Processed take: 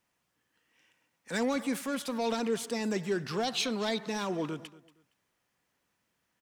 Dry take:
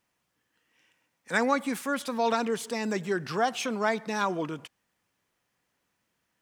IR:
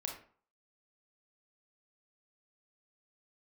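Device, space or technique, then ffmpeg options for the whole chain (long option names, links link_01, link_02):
one-band saturation: -filter_complex "[0:a]acrossover=split=570|2500[link_01][link_02][link_03];[link_02]asoftclip=type=tanh:threshold=-37.5dB[link_04];[link_01][link_04][link_03]amix=inputs=3:normalize=0,asettb=1/sr,asplit=3[link_05][link_06][link_07];[link_05]atrim=end=3.434[link_08];[link_06]atrim=start=3.43:end=4.06,asetpts=PTS-STARTPTS,afade=type=in:duration=0.004:curve=qsin,afade=type=out:start_time=0.626:duration=0.004:curve=qsin,equalizer=frequency=4000:width_type=o:width=0.38:gain=13.5[link_09];[link_07]atrim=start=4.056[link_10];[link_08][link_09]acrossfade=duration=0.004:curve1=hsin:curve2=qsin[link_11];[link_11][link_10]acrossfade=duration=0.004:curve1=qsin:curve2=hsin,aecho=1:1:233|466:0.112|0.0281,volume=-1dB"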